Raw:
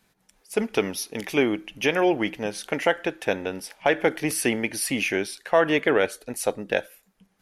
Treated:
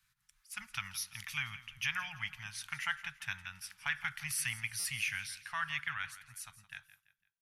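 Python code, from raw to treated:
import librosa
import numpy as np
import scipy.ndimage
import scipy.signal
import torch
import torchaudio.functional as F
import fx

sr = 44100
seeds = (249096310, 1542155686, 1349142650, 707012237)

p1 = fx.fade_out_tail(x, sr, length_s=2.1)
p2 = scipy.signal.sosfilt(scipy.signal.cheby1(3, 1.0, [130.0, 1200.0], 'bandstop', fs=sr, output='sos'), p1)
p3 = p2 + fx.echo_feedback(p2, sr, ms=168, feedback_pct=38, wet_db=-16.0, dry=0)
p4 = fx.buffer_glitch(p3, sr, at_s=(4.79,), block=256, repeats=9)
y = p4 * librosa.db_to_amplitude(-7.5)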